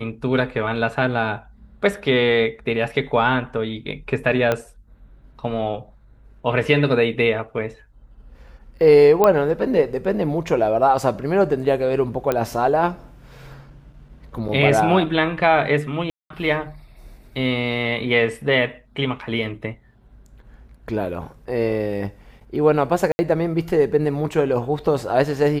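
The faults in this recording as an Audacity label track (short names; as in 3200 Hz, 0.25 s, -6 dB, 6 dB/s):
4.520000	4.520000	pop -7 dBFS
9.240000	9.240000	pop -4 dBFS
12.320000	12.320000	pop -8 dBFS
14.480000	14.490000	gap 6.6 ms
16.100000	16.300000	gap 0.203 s
23.120000	23.190000	gap 70 ms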